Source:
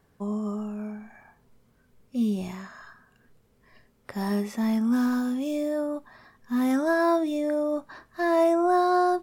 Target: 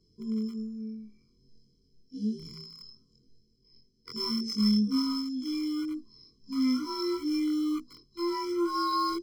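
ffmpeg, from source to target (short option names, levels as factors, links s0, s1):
-filter_complex "[0:a]afftfilt=real='re':imag='-im':win_size=2048:overlap=0.75,lowpass=f=5200:t=q:w=13,bandreject=f=81.39:t=h:w=4,bandreject=f=162.78:t=h:w=4,bandreject=f=244.17:t=h:w=4,bandreject=f=325.56:t=h:w=4,bandreject=f=406.95:t=h:w=4,bandreject=f=488.34:t=h:w=4,bandreject=f=569.73:t=h:w=4,bandreject=f=651.12:t=h:w=4,bandreject=f=732.51:t=h:w=4,acrossover=split=140|560|3800[s0][s1][s2][s3];[s2]aeval=exprs='val(0)*gte(abs(val(0)),0.00944)':c=same[s4];[s0][s1][s4][s3]amix=inputs=4:normalize=0,tremolo=f=0.65:d=0.44,afftfilt=real='re*eq(mod(floor(b*sr/1024/490),2),0)':imag='im*eq(mod(floor(b*sr/1024/490),2),0)':win_size=1024:overlap=0.75,volume=1.41"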